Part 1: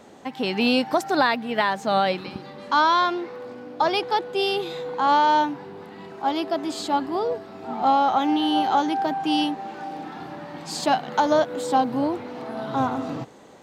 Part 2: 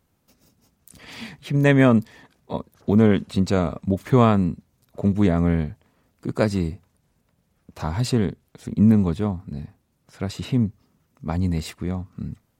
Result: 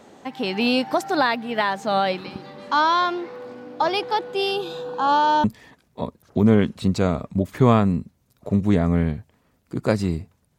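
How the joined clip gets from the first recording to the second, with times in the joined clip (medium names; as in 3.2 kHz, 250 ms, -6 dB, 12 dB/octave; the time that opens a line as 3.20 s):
part 1
4.51–5.44 s: Butterworth band-stop 2.1 kHz, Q 3.1
5.44 s: go over to part 2 from 1.96 s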